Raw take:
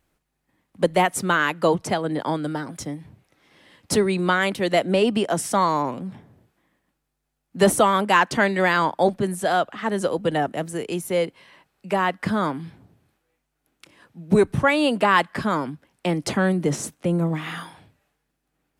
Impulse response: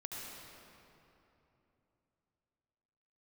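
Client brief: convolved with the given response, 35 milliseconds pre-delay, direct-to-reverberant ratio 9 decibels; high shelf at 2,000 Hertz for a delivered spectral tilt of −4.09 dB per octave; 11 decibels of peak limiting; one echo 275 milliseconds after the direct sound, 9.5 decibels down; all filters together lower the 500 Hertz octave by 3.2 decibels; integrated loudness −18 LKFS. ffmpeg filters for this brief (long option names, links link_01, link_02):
-filter_complex "[0:a]equalizer=frequency=500:width_type=o:gain=-4.5,highshelf=frequency=2000:gain=5.5,alimiter=limit=-14.5dB:level=0:latency=1,aecho=1:1:275:0.335,asplit=2[link_01][link_02];[1:a]atrim=start_sample=2205,adelay=35[link_03];[link_02][link_03]afir=irnorm=-1:irlink=0,volume=-8.5dB[link_04];[link_01][link_04]amix=inputs=2:normalize=0,volume=6.5dB"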